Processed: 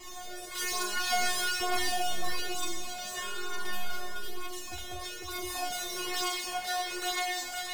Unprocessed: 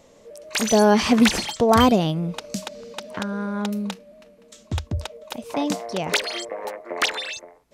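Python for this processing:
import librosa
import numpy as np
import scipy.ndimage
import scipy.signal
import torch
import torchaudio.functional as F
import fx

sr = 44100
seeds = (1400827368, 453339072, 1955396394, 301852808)

p1 = fx.spec_clip(x, sr, under_db=16)
p2 = fx.power_curve(p1, sr, exponent=0.35)
p3 = fx.comb_fb(p2, sr, f0_hz=360.0, decay_s=0.79, harmonics='all', damping=0.0, mix_pct=100)
p4 = p3 + fx.echo_single(p3, sr, ms=506, db=-4.0, dry=0)
p5 = fx.comb_cascade(p4, sr, direction='falling', hz=1.1)
y = F.gain(torch.from_numpy(p5), 2.0).numpy()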